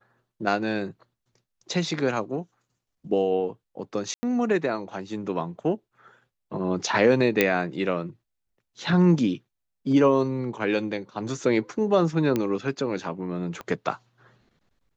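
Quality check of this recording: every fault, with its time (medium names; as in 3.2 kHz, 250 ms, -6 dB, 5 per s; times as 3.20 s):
4.14–4.23 s: dropout 90 ms
7.41 s: pop -5 dBFS
12.36 s: pop -12 dBFS
13.61 s: pop -22 dBFS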